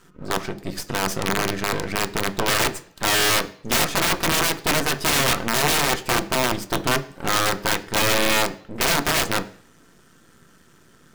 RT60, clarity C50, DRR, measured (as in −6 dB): 0.55 s, 17.0 dB, 9.0 dB